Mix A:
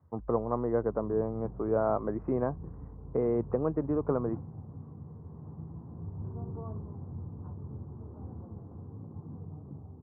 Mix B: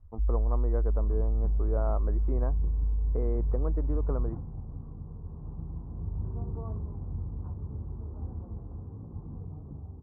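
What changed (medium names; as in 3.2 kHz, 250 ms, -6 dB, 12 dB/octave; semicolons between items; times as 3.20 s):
speech -6.5 dB; master: remove high-pass 97 Hz 24 dB/octave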